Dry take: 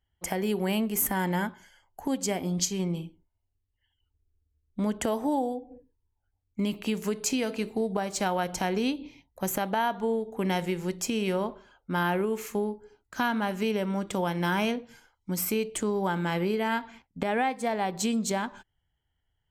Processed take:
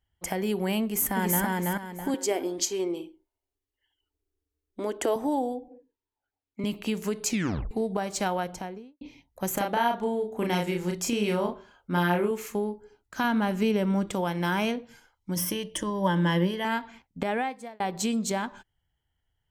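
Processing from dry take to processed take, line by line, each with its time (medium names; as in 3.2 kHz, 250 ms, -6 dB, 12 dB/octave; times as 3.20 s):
0.83–1.44 s: echo throw 330 ms, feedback 30%, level -1 dB
2.14–5.16 s: resonant low shelf 240 Hz -11.5 dB, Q 3
5.68–6.64 s: three-band isolator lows -23 dB, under 210 Hz, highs -12 dB, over 5.3 kHz
7.29 s: tape stop 0.42 s
8.24–9.01 s: studio fade out
9.54–12.31 s: doubling 34 ms -3 dB
13.24–14.11 s: bass shelf 270 Hz +7.5 dB
15.35–16.65 s: rippled EQ curve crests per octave 1.2, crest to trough 14 dB
17.29–17.80 s: fade out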